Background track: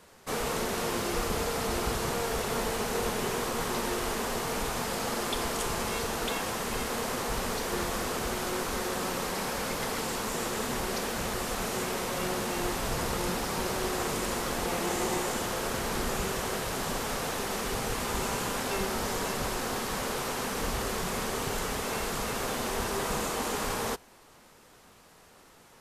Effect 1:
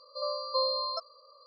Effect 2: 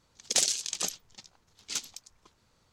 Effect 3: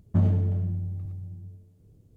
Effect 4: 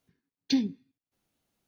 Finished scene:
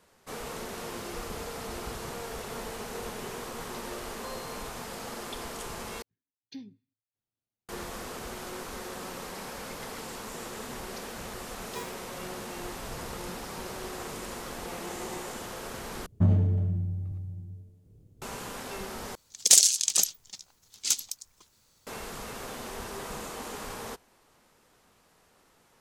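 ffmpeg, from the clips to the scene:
ffmpeg -i bed.wav -i cue0.wav -i cue1.wav -i cue2.wav -i cue3.wav -filter_complex "[4:a]asplit=2[link_01][link_02];[0:a]volume=-7.5dB[link_03];[1:a]lowpass=3100[link_04];[link_01]equalizer=frequency=110:width_type=o:width=0.26:gain=13.5[link_05];[link_02]aeval=exprs='val(0)*sgn(sin(2*PI*720*n/s))':channel_layout=same[link_06];[2:a]aemphasis=mode=production:type=75fm[link_07];[link_03]asplit=4[link_08][link_09][link_10][link_11];[link_08]atrim=end=6.024[link_12];[link_05]atrim=end=1.67,asetpts=PTS-STARTPTS,volume=-18dB[link_13];[link_09]atrim=start=7.686:end=16.064[link_14];[3:a]atrim=end=2.16,asetpts=PTS-STARTPTS,volume=-0.5dB[link_15];[link_10]atrim=start=18.216:end=19.154[link_16];[link_07]atrim=end=2.72,asetpts=PTS-STARTPTS,volume=-1.5dB[link_17];[link_11]atrim=start=21.866[link_18];[link_04]atrim=end=1.46,asetpts=PTS-STARTPTS,volume=-14dB,afade=type=in:duration=0.004:curve=hsin,afade=type=out:start_time=1.456:duration=0.004:curve=hsin,adelay=162729S[link_19];[link_06]atrim=end=1.67,asetpts=PTS-STARTPTS,volume=-16dB,afade=type=in:duration=0.004:curve=hsin,afade=type=out:start_time=1.666:duration=0.004:curve=hsin,adelay=11230[link_20];[link_12][link_13]acrossfade=duration=0.004:curve1=hsin:curve2=hsin[link_21];[link_21][link_14]acrossfade=duration=0.004:curve1=hsin:curve2=hsin[link_22];[link_22][link_15]acrossfade=duration=0.004:curve1=hsin:curve2=hsin[link_23];[link_23][link_16]acrossfade=duration=0.004:curve1=hsin:curve2=hsin[link_24];[link_24][link_17]acrossfade=duration=0.004:curve1=hsin:curve2=hsin[link_25];[link_25][link_18]acrossfade=duration=0.004:curve1=hsin:curve2=hsin[link_26];[link_26][link_19][link_20]amix=inputs=3:normalize=0" out.wav

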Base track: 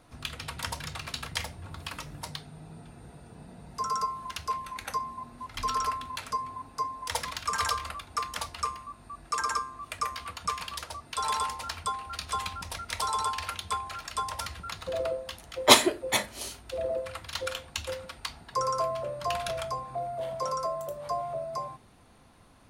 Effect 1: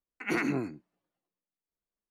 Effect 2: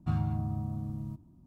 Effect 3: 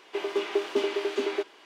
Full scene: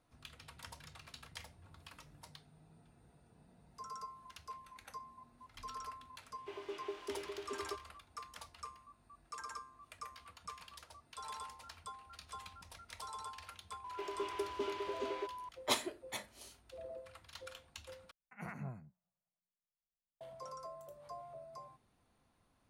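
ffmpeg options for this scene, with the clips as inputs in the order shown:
ffmpeg -i bed.wav -i cue0.wav -i cue1.wav -i cue2.wav -filter_complex "[3:a]asplit=2[link_01][link_02];[0:a]volume=-17dB[link_03];[link_02]aeval=exprs='val(0)+0.0282*sin(2*PI*1000*n/s)':channel_layout=same[link_04];[1:a]firequalizer=gain_entry='entry(190,0);entry(290,-28);entry(610,-4);entry(3500,-25);entry(8700,-11)':delay=0.05:min_phase=1[link_05];[link_03]asplit=2[link_06][link_07];[link_06]atrim=end=18.114[link_08];[link_05]atrim=end=2.1,asetpts=PTS-STARTPTS,volume=-5.5dB[link_09];[link_07]atrim=start=20.206[link_10];[link_01]atrim=end=1.65,asetpts=PTS-STARTPTS,volume=-16.5dB,afade=type=in:duration=0.004:curve=hsin,afade=type=out:start_time=1.646:duration=0.004:curve=hsin,adelay=6330[link_11];[link_04]atrim=end=1.65,asetpts=PTS-STARTPTS,volume=-13dB,afade=type=in:duration=0.004:curve=hsin,afade=type=out:start_time=1.646:duration=0.004:curve=hsin,adelay=13840[link_12];[link_08][link_09]acrossfade=duration=0.004:curve1=hsin:curve2=hsin[link_13];[link_13][link_10]acrossfade=duration=0.004:curve1=hsin:curve2=hsin[link_14];[link_14][link_11][link_12]amix=inputs=3:normalize=0" out.wav

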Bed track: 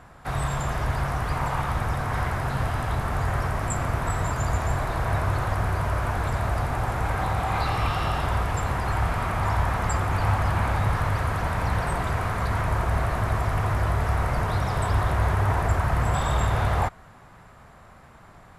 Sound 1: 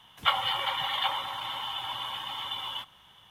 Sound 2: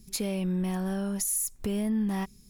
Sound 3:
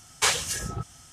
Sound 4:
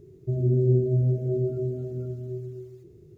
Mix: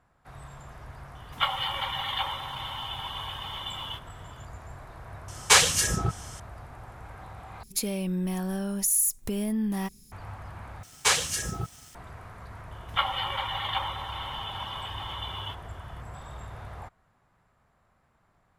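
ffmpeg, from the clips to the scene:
ffmpeg -i bed.wav -i cue0.wav -i cue1.wav -i cue2.wav -filter_complex "[1:a]asplit=2[link_01][link_02];[3:a]asplit=2[link_03][link_04];[0:a]volume=-18.5dB[link_05];[link_03]acontrast=42[link_06];[2:a]highshelf=frequency=7000:gain=8[link_07];[link_04]acrusher=bits=7:mix=0:aa=0.5[link_08];[link_02]highshelf=frequency=3700:gain=-7[link_09];[link_05]asplit=3[link_10][link_11][link_12];[link_10]atrim=end=7.634[link_13];[link_07]atrim=end=2.49,asetpts=PTS-STARTPTS,volume=-0.5dB[link_14];[link_11]atrim=start=10.116:end=10.834[link_15];[link_08]atrim=end=1.12[link_16];[link_12]atrim=start=11.946[link_17];[link_01]atrim=end=3.3,asetpts=PTS-STARTPTS,volume=-1.5dB,afade=type=in:duration=0.004:curve=hsin,afade=type=out:start_time=3.296:duration=0.004:curve=hsin,adelay=1150[link_18];[link_06]atrim=end=1.12,asetpts=PTS-STARTPTS,afade=type=in:duration=0.004:curve=hsin,afade=type=out:start_time=1.116:duration=0.004:curve=hsin,adelay=5280[link_19];[link_09]atrim=end=3.3,asetpts=PTS-STARTPTS,afade=type=in:duration=0.004:curve=hsin,afade=type=out:start_time=3.296:duration=0.004:curve=hsin,adelay=12710[link_20];[link_13][link_14]acrossfade=duration=0.004:curve1=hsin:curve2=hsin[link_21];[link_21][link_15]acrossfade=duration=0.004:curve1=hsin:curve2=hsin[link_22];[link_22][link_16]acrossfade=duration=0.004:curve1=hsin:curve2=hsin[link_23];[link_23][link_17]acrossfade=duration=0.004:curve1=hsin:curve2=hsin[link_24];[link_24][link_18][link_19][link_20]amix=inputs=4:normalize=0" out.wav

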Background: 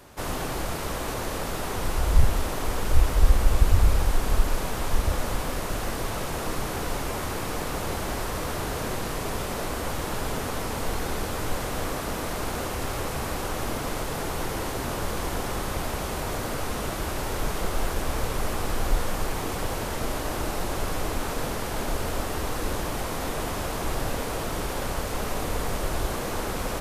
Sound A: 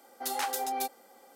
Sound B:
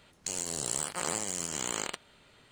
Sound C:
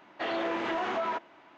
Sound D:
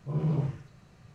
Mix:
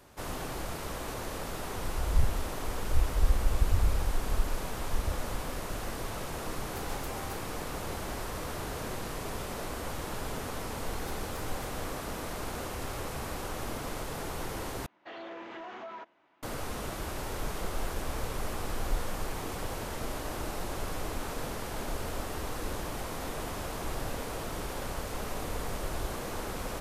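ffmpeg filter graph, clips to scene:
ffmpeg -i bed.wav -i cue0.wav -i cue1.wav -i cue2.wav -filter_complex "[1:a]asplit=2[link_01][link_02];[0:a]volume=-7dB[link_03];[link_02]acompressor=threshold=-40dB:ratio=6:attack=3.2:release=140:knee=1:detection=peak[link_04];[link_03]asplit=2[link_05][link_06];[link_05]atrim=end=14.864[link_07];[3:a]atrim=end=1.57,asetpts=PTS-STARTPTS,volume=-12dB[link_08];[link_06]atrim=start=16.426[link_09];[link_01]atrim=end=1.35,asetpts=PTS-STARTPTS,volume=-15dB,afade=type=in:duration=0.004:curve=hsin,afade=type=out:start_time=1.346:duration=0.004:curve=hsin,adelay=286650S[link_10];[link_04]atrim=end=1.35,asetpts=PTS-STARTPTS,volume=-7.5dB,afade=type=in:duration=0.004:curve=hsin,afade=type=out:start_time=1.346:duration=0.004:curve=hsin,adelay=477162S[link_11];[link_07][link_08]acrossfade=duration=0.004:curve1=hsin:curve2=hsin[link_12];[link_12][link_09]acrossfade=duration=0.004:curve1=hsin:curve2=hsin[link_13];[link_13][link_10][link_11]amix=inputs=3:normalize=0" out.wav

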